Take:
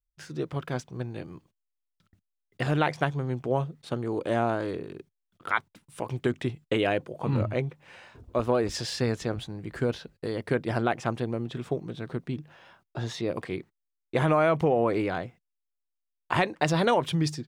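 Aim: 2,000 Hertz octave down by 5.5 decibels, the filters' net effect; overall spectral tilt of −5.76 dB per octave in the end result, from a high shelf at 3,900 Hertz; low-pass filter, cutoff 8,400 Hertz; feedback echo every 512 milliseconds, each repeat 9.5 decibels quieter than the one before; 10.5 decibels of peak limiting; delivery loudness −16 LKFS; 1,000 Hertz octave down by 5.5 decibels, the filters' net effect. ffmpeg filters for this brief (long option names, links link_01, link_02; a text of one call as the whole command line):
ffmpeg -i in.wav -af "lowpass=8400,equalizer=frequency=1000:width_type=o:gain=-7,equalizer=frequency=2000:width_type=o:gain=-6,highshelf=frequency=3900:gain=6,alimiter=limit=-23dB:level=0:latency=1,aecho=1:1:512|1024|1536|2048:0.335|0.111|0.0365|0.012,volume=18.5dB" out.wav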